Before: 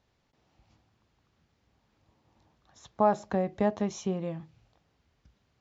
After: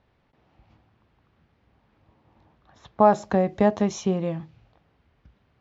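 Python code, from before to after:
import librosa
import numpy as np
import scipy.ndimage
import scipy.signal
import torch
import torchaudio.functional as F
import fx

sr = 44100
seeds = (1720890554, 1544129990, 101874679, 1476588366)

y = fx.env_lowpass(x, sr, base_hz=2700.0, full_db=-25.0)
y = y * librosa.db_to_amplitude(7.0)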